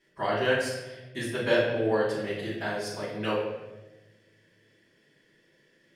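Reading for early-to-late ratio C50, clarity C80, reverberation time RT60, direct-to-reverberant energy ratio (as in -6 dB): 2.0 dB, 5.0 dB, 1.2 s, -10.5 dB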